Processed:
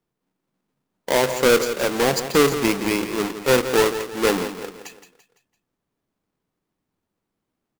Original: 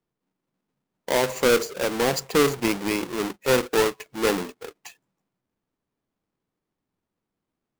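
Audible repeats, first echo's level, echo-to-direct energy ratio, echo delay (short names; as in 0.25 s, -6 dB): 4, -11.0 dB, -10.0 dB, 0.169 s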